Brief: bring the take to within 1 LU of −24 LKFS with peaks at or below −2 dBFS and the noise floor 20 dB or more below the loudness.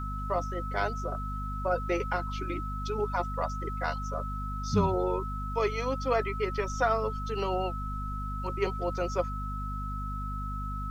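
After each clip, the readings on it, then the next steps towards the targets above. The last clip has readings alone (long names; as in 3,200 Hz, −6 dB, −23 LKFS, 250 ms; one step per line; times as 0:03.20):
mains hum 50 Hz; hum harmonics up to 250 Hz; level of the hum −33 dBFS; interfering tone 1,300 Hz; level of the tone −37 dBFS; integrated loudness −32.0 LKFS; sample peak −13.5 dBFS; target loudness −24.0 LKFS
→ hum removal 50 Hz, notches 5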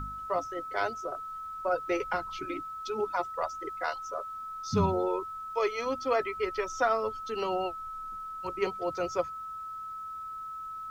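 mains hum none found; interfering tone 1,300 Hz; level of the tone −37 dBFS
→ notch filter 1,300 Hz, Q 30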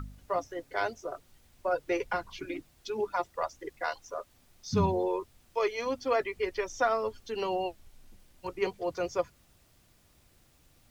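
interfering tone none found; integrated loudness −33.0 LKFS; sample peak −15.5 dBFS; target loudness −24.0 LKFS
→ level +9 dB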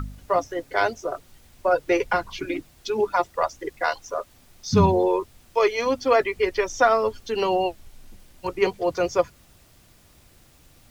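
integrated loudness −24.0 LKFS; sample peak −6.5 dBFS; background noise floor −55 dBFS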